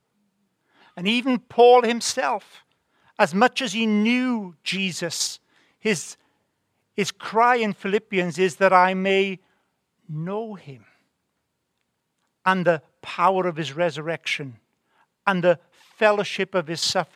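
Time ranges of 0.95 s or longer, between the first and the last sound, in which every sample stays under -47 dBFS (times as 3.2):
10.88–12.45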